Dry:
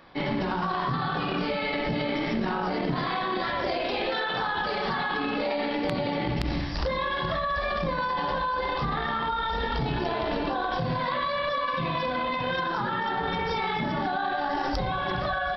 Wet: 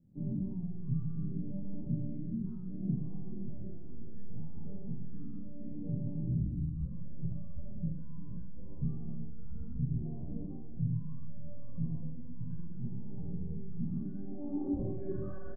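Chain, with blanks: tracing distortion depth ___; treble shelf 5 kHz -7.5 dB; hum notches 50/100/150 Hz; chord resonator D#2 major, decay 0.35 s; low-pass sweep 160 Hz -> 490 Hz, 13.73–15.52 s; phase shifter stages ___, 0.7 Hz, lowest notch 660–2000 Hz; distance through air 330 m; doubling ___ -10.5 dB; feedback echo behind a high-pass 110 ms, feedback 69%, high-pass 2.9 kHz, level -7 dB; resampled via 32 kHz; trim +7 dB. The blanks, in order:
0.29 ms, 12, 46 ms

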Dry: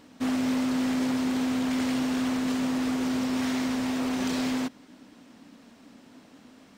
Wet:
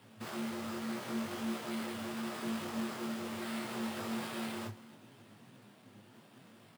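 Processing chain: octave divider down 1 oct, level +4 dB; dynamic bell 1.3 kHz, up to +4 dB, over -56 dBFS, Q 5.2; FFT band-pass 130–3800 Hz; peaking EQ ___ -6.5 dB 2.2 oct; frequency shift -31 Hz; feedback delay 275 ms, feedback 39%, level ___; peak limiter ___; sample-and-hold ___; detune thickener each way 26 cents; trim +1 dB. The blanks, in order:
230 Hz, -24 dB, -28.5 dBFS, 7×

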